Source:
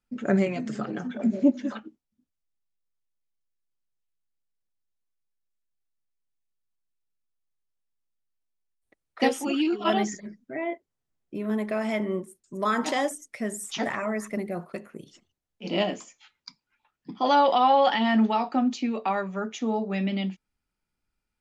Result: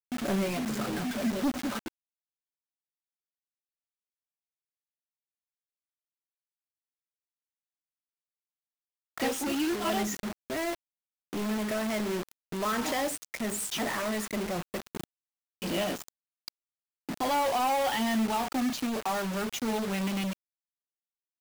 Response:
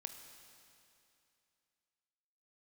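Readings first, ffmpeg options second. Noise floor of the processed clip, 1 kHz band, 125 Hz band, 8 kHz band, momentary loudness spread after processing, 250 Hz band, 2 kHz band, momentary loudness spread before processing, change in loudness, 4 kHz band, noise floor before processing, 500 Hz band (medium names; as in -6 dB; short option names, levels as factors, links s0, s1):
under -85 dBFS, -6.0 dB, -3.0 dB, +4.0 dB, 14 LU, -4.5 dB, -2.0 dB, 15 LU, -4.5 dB, -1.5 dB, -84 dBFS, -5.0 dB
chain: -filter_complex "[0:a]agate=range=0.0224:threshold=0.00501:ratio=3:detection=peak,asplit=2[s0][s1];[s1]acompressor=threshold=0.0178:ratio=12,volume=0.794[s2];[s0][s2]amix=inputs=2:normalize=0,acrusher=bits=5:mode=log:mix=0:aa=0.000001,asoftclip=type=tanh:threshold=0.0501,acrusher=bits=5:mix=0:aa=0.000001"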